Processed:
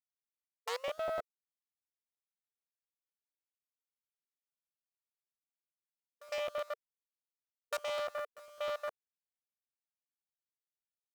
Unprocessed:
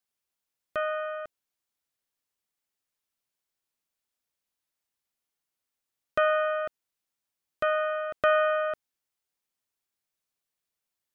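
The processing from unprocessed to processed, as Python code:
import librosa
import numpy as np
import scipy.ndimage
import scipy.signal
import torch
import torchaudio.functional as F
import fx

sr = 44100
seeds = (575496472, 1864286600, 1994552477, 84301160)

y = fx.tape_start_head(x, sr, length_s=1.03)
y = fx.doppler_pass(y, sr, speed_mps=15, closest_m=7.2, pass_at_s=2.53)
y = fx.env_lowpass_down(y, sr, base_hz=1200.0, full_db=-41.5)
y = fx.rider(y, sr, range_db=10, speed_s=0.5)
y = fx.step_gate(y, sr, bpm=197, pattern='x.xx....xx.x.xx', floor_db=-24.0, edge_ms=4.5)
y = fx.quant_dither(y, sr, seeds[0], bits=12, dither='none')
y = fx.cheby_harmonics(y, sr, harmonics=(5, 6, 7), levels_db=(-7, -16, -13), full_scale_db=-39.0)
y = fx.brickwall_highpass(y, sr, low_hz=460.0)
y = fx.buffer_crackle(y, sr, first_s=0.87, period_s=0.1, block=512, kind='repeat')
y = y * librosa.db_to_amplitude(8.5)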